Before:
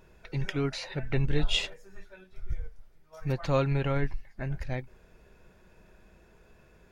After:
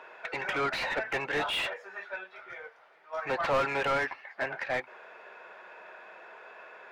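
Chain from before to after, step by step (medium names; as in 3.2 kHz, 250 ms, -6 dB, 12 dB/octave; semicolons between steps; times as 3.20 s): high-pass 220 Hz 12 dB/octave; three-band isolator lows -21 dB, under 560 Hz, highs -15 dB, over 3.7 kHz; overdrive pedal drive 28 dB, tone 1.3 kHz, clips at -17.5 dBFS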